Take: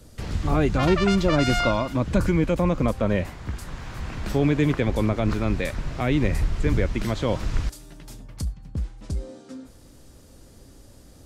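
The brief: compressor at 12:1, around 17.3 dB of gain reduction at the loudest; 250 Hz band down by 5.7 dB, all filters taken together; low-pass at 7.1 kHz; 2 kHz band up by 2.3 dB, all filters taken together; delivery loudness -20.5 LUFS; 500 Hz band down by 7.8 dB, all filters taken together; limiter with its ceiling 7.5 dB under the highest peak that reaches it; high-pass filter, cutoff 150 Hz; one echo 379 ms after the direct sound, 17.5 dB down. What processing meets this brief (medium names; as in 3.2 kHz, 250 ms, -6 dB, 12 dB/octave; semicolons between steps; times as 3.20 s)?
high-pass 150 Hz; low-pass 7.1 kHz; peaking EQ 250 Hz -4 dB; peaking EQ 500 Hz -9 dB; peaking EQ 2 kHz +3.5 dB; compression 12:1, threshold -38 dBFS; peak limiter -33.5 dBFS; delay 379 ms -17.5 dB; trim +24 dB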